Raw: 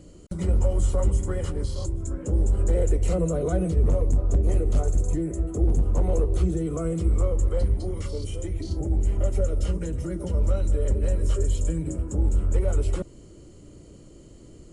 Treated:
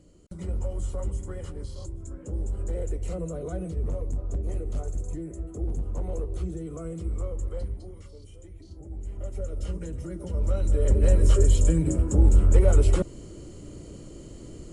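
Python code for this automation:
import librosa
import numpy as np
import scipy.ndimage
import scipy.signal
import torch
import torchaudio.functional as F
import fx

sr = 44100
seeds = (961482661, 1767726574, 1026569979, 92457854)

y = fx.gain(x, sr, db=fx.line((7.57, -8.5), (8.13, -16.0), (8.78, -16.0), (9.75, -5.5), (10.26, -5.5), (11.11, 5.0)))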